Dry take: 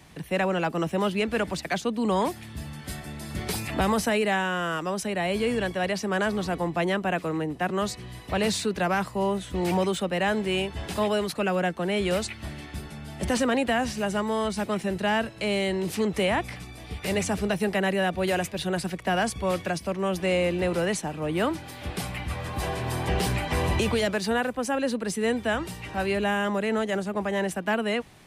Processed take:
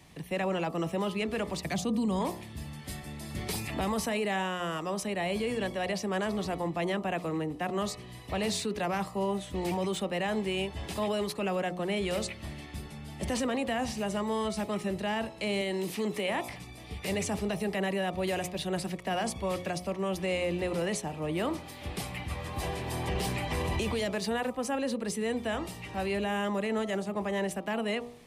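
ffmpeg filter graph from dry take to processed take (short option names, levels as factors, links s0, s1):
-filter_complex "[0:a]asettb=1/sr,asplit=3[s0][s1][s2];[s0]atrim=end=1.634[s3];[s1]atrim=start=1.63:end=2.19,asetpts=PTS-STARTPTS,afade=t=in:d=0.004:c=qsin,afade=t=out:st=0.556:d=0.004:c=qsin,highpass=61,bass=f=250:g=13,treble=f=4000:g=6[s4];[s2]atrim=start=2.186[s5];[s3][s4]acrossfade=d=0.004:c1=hsin:c2=qsin[s6];[s6][s5]acrossfade=d=0.004:c1=qsin:c2=hsin,asettb=1/sr,asplit=3[s7][s8][s9];[s7]atrim=end=15.614[s10];[s8]atrim=start=15.61:end=16.49,asetpts=PTS-STARTPTS,afade=t=in:d=0.004:c=qsin,afade=t=out:st=0.876:d=0.004:c=qsin,acrossover=split=3800[s11][s12];[s12]acompressor=threshold=0.00355:ratio=4:attack=1:release=60[s13];[s11][s13]amix=inputs=2:normalize=0,highpass=170,aemphasis=mode=production:type=50kf[s14];[s9]atrim=start=16.486[s15];[s10][s14]acrossfade=d=0.004:c1=hsin:c2=qsin[s16];[s16][s15]acrossfade=d=0.004:c1=qsin:c2=hsin,equalizer=f=1500:w=6.6:g=-8.5,bandreject=f=59.94:t=h:w=4,bandreject=f=119.88:t=h:w=4,bandreject=f=179.82:t=h:w=4,bandreject=f=239.76:t=h:w=4,bandreject=f=299.7:t=h:w=4,bandreject=f=359.64:t=h:w=4,bandreject=f=419.58:t=h:w=4,bandreject=f=479.52:t=h:w=4,bandreject=f=539.46:t=h:w=4,bandreject=f=599.4:t=h:w=4,bandreject=f=659.34:t=h:w=4,bandreject=f=719.28:t=h:w=4,bandreject=f=779.22:t=h:w=4,bandreject=f=839.16:t=h:w=4,bandreject=f=899.1:t=h:w=4,bandreject=f=959.04:t=h:w=4,bandreject=f=1018.98:t=h:w=4,bandreject=f=1078.92:t=h:w=4,bandreject=f=1138.86:t=h:w=4,bandreject=f=1198.8:t=h:w=4,bandreject=f=1258.74:t=h:w=4,bandreject=f=1318.68:t=h:w=4,alimiter=limit=0.106:level=0:latency=1:release=13,volume=0.668"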